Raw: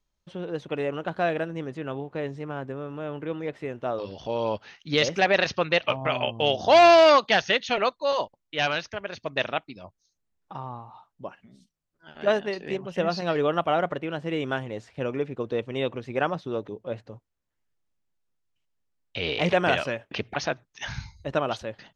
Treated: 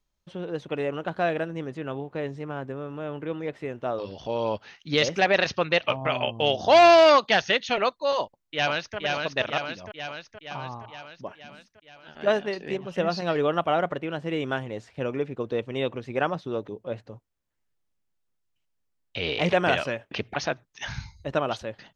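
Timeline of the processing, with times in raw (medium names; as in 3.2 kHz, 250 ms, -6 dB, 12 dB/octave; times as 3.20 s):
8.20–8.97 s: echo throw 470 ms, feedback 65%, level -3 dB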